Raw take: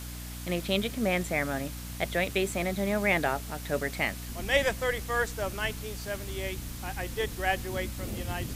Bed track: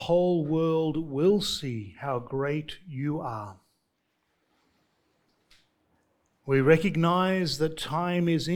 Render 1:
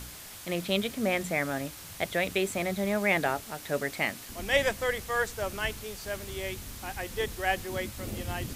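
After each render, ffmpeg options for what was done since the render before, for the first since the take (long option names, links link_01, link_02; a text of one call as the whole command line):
ffmpeg -i in.wav -af "bandreject=frequency=60:width_type=h:width=4,bandreject=frequency=120:width_type=h:width=4,bandreject=frequency=180:width_type=h:width=4,bandreject=frequency=240:width_type=h:width=4,bandreject=frequency=300:width_type=h:width=4" out.wav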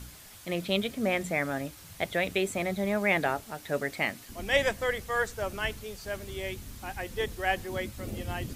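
ffmpeg -i in.wav -af "afftdn=noise_reduction=6:noise_floor=-45" out.wav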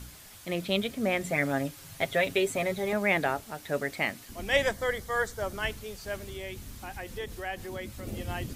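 ffmpeg -i in.wav -filter_complex "[0:a]asettb=1/sr,asplit=3[link_01][link_02][link_03];[link_01]atrim=end=1.224[link_04];[link_02]atrim=start=1.22:end=2.93,asetpts=PTS-STARTPTS,afade=type=in:duration=0.004:curve=qsin,afade=type=out:start_time=1.706:duration=0.004:curve=qsin,aecho=1:1:7.4:0.65,atrim=end_sample=75411[link_05];[link_03]atrim=start=2.926[link_06];[link_04][link_05]acrossfade=duration=0.004:curve1=hsin:curve2=qsin[link_07];[link_07][link_06]acrossfade=duration=0.004:curve1=qsin:curve2=hsin,asettb=1/sr,asplit=3[link_08][link_09][link_10];[link_08]atrim=end=4.674[link_11];[link_09]atrim=start=4.67:end=5.63,asetpts=PTS-STARTPTS,afade=type=in:duration=0.004:curve=qsin,afade=type=out:start_time=0.956:duration=0.004:curve=qsin,equalizer=frequency=2600:width=7.2:gain=-12[link_12];[link_10]atrim=start=5.626[link_13];[link_11][link_12]acrossfade=duration=0.004:curve1=hsin:curve2=qsin[link_14];[link_14][link_13]acrossfade=duration=0.004:curve1=qsin:curve2=hsin,asettb=1/sr,asplit=3[link_15][link_16][link_17];[link_15]atrim=end=6.274[link_18];[link_16]atrim=start=6.27:end=8.07,asetpts=PTS-STARTPTS,afade=type=in:duration=0.004:curve=qsin,afade=type=out:start_time=1.796:duration=0.004:curve=qsin,acompressor=threshold=-36dB:ratio=2:attack=3.2:release=140:knee=1:detection=peak[link_19];[link_17]atrim=start=8.066[link_20];[link_18][link_19]acrossfade=duration=0.004:curve1=hsin:curve2=qsin[link_21];[link_21][link_20]acrossfade=duration=0.004:curve1=qsin:curve2=hsin" out.wav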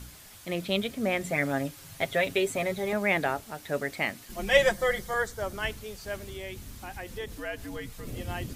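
ffmpeg -i in.wav -filter_complex "[0:a]asettb=1/sr,asplit=3[link_01][link_02][link_03];[link_01]atrim=end=4.294[link_04];[link_02]atrim=start=4.29:end=5.14,asetpts=PTS-STARTPTS,afade=type=in:duration=0.004:curve=qsin,afade=type=out:start_time=0.846:duration=0.004:curve=qsin,aecho=1:1:5.6:0.96,atrim=end_sample=37485[link_05];[link_03]atrim=start=5.136[link_06];[link_04][link_05]acrossfade=duration=0.004:curve1=hsin:curve2=qsin[link_07];[link_07][link_06]acrossfade=duration=0.004:curve1=qsin:curve2=hsin,asettb=1/sr,asplit=3[link_08][link_09][link_10];[link_08]atrim=end=7.384[link_11];[link_09]atrim=start=7.38:end=8.16,asetpts=PTS-STARTPTS,afade=type=in:duration=0.004:curve=qsin,afade=type=out:start_time=0.776:duration=0.004:curve=qsin,afreqshift=-90[link_12];[link_10]atrim=start=8.156[link_13];[link_11][link_12]acrossfade=duration=0.004:curve1=hsin:curve2=qsin[link_14];[link_14][link_13]acrossfade=duration=0.004:curve1=qsin:curve2=hsin" out.wav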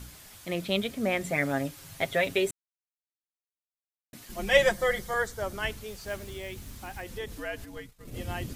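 ffmpeg -i in.wav -filter_complex "[0:a]asettb=1/sr,asplit=3[link_01][link_02][link_03];[link_01]atrim=end=5.884[link_04];[link_02]atrim=start=5.88:end=7.02,asetpts=PTS-STARTPTS,afade=type=in:duration=0.004:curve=qsin,afade=type=out:start_time=1.136:duration=0.004:curve=qsin,acrusher=bits=5:mode=log:mix=0:aa=0.000001[link_05];[link_03]atrim=start=7.016[link_06];[link_04][link_05]acrossfade=duration=0.004:curve1=hsin:curve2=qsin[link_07];[link_07][link_06]acrossfade=duration=0.004:curve1=qsin:curve2=hsin,asplit=3[link_08][link_09][link_10];[link_08]afade=type=out:start_time=7.64:duration=0.02[link_11];[link_09]agate=range=-33dB:threshold=-33dB:ratio=3:release=100:detection=peak,afade=type=in:start_time=7.64:duration=0.02,afade=type=out:start_time=8.14:duration=0.02[link_12];[link_10]afade=type=in:start_time=8.14:duration=0.02[link_13];[link_11][link_12][link_13]amix=inputs=3:normalize=0,asplit=3[link_14][link_15][link_16];[link_14]atrim=end=2.51,asetpts=PTS-STARTPTS,afade=type=out:start_time=2.506:duration=0.004:curve=hsin[link_17];[link_15]atrim=start=2.51:end=4.13,asetpts=PTS-STARTPTS,volume=0[link_18];[link_16]atrim=start=4.13,asetpts=PTS-STARTPTS,afade=type=in:duration=0.004:curve=hsin[link_19];[link_17][link_18][link_19]concat=n=3:v=0:a=1" out.wav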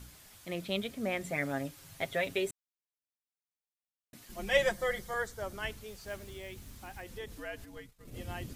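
ffmpeg -i in.wav -af "volume=-6dB" out.wav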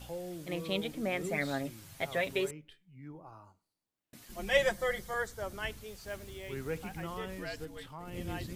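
ffmpeg -i in.wav -i bed.wav -filter_complex "[1:a]volume=-18dB[link_01];[0:a][link_01]amix=inputs=2:normalize=0" out.wav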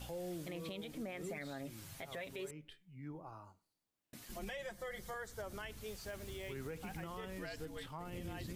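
ffmpeg -i in.wav -af "acompressor=threshold=-38dB:ratio=10,alimiter=level_in=11.5dB:limit=-24dB:level=0:latency=1:release=45,volume=-11.5dB" out.wav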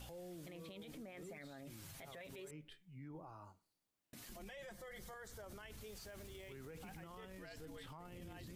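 ffmpeg -i in.wav -af "alimiter=level_in=20.5dB:limit=-24dB:level=0:latency=1:release=29,volume=-20.5dB" out.wav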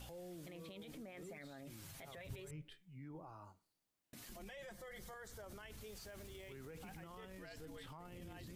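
ffmpeg -i in.wav -filter_complex "[0:a]asettb=1/sr,asplit=3[link_01][link_02][link_03];[link_01]atrim=end=2.174[link_04];[link_02]atrim=start=2.17:end=2.62,asetpts=PTS-STARTPTS,afade=type=in:duration=0.004:curve=qsin,afade=type=out:start_time=0.446:duration=0.004:curve=qsin,lowshelf=frequency=150:width_type=q:width=1.5:gain=13.5[link_05];[link_03]atrim=start=2.616[link_06];[link_04][link_05]acrossfade=duration=0.004:curve1=hsin:curve2=qsin[link_07];[link_07][link_06]acrossfade=duration=0.004:curve1=qsin:curve2=hsin" out.wav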